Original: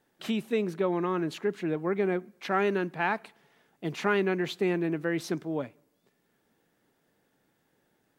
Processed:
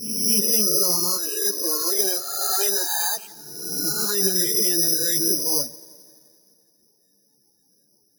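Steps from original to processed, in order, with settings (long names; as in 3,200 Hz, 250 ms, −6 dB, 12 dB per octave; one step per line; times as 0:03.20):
peak hold with a rise ahead of every peak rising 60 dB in 1.27 s
0:01.16–0:03.17: high-pass filter 430 Hz 12 dB per octave
brickwall limiter −19 dBFS, peak gain reduction 9.5 dB
spectral peaks only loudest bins 16
delay with a low-pass on its return 86 ms, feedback 78%, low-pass 2,900 Hz, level −22.5 dB
bad sample-rate conversion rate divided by 8×, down none, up zero stuff
string-ensemble chorus
level +2.5 dB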